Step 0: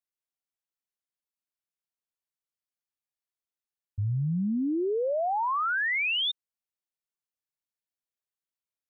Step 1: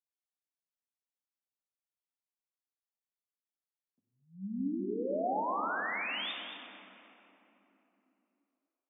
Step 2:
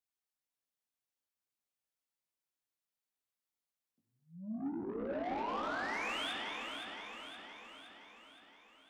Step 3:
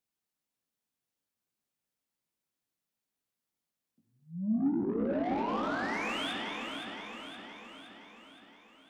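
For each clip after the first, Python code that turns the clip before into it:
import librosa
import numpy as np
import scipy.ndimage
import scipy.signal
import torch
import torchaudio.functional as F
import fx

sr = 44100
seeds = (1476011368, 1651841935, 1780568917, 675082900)

y1 = scipy.signal.sosfilt(scipy.signal.cheby1(6, 6, 190.0, 'highpass', fs=sr, output='sos'), x)
y1 = y1 + 10.0 ** (-11.5 / 20.0) * np.pad(y1, (int(224 * sr / 1000.0), 0))[:len(y1)]
y1 = fx.room_shoebox(y1, sr, seeds[0], volume_m3=170.0, walls='hard', distance_m=0.36)
y1 = F.gain(torch.from_numpy(y1), -6.5).numpy()
y2 = 10.0 ** (-35.5 / 20.0) * np.tanh(y1 / 10.0 ** (-35.5 / 20.0))
y2 = fx.doubler(y2, sr, ms=18.0, db=-5)
y2 = fx.echo_feedback(y2, sr, ms=518, feedback_pct=56, wet_db=-6.5)
y2 = F.gain(torch.from_numpy(y2), -1.0).numpy()
y3 = fx.peak_eq(y2, sr, hz=190.0, db=9.5, octaves=2.0)
y3 = F.gain(torch.from_numpy(y3), 2.5).numpy()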